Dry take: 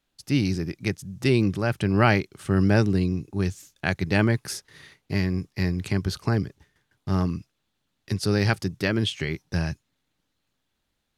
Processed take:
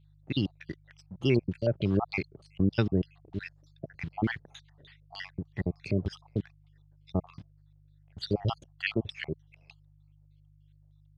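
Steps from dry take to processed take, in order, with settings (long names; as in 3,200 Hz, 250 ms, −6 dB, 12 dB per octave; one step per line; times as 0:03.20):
time-frequency cells dropped at random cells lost 63%
in parallel at −8 dB: bit reduction 7 bits
on the sum: auto-filter low-pass square 3.3 Hz 640–3,500 Hz
hum with harmonics 50 Hz, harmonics 3, −53 dBFS −1 dB per octave
level −7 dB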